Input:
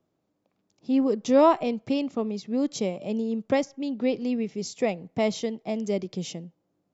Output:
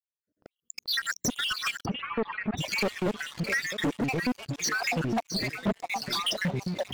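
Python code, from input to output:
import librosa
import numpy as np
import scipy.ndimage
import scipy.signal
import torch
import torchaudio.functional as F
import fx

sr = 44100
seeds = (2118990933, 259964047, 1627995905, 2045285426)

y = fx.spec_dropout(x, sr, seeds[0], share_pct=85)
y = fx.recorder_agc(y, sr, target_db=-24.5, rise_db_per_s=41.0, max_gain_db=30)
y = fx.echo_thinned(y, sr, ms=659, feedback_pct=51, hz=500.0, wet_db=-12.5)
y = fx.echo_pitch(y, sr, ms=278, semitones=-4, count=2, db_per_echo=-6.0)
y = fx.leveller(y, sr, passes=5)
y = fx.lowpass(y, sr, hz=2200.0, slope=24, at=(1.84, 2.57), fade=0.02)
y = fx.band_widen(y, sr, depth_pct=70, at=(5.23, 5.8))
y = y * librosa.db_to_amplitude(-8.0)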